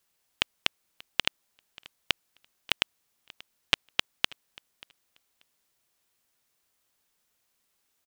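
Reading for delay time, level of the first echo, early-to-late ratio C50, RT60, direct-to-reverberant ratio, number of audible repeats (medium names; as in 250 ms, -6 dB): 585 ms, -23.0 dB, no reverb, no reverb, no reverb, 1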